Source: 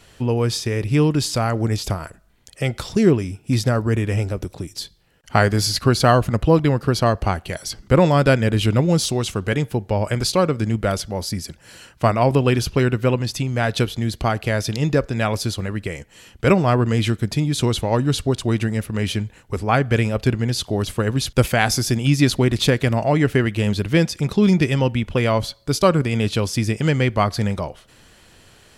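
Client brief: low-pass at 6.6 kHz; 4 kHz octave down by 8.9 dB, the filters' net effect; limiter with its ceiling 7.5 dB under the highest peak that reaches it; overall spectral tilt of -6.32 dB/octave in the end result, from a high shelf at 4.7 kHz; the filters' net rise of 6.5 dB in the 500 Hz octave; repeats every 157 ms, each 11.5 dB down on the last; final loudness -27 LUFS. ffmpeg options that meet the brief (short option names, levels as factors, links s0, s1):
-af "lowpass=6600,equalizer=f=500:t=o:g=8,equalizer=f=4000:t=o:g=-7.5,highshelf=f=4700:g=-6.5,alimiter=limit=0.447:level=0:latency=1,aecho=1:1:157|314|471:0.266|0.0718|0.0194,volume=0.398"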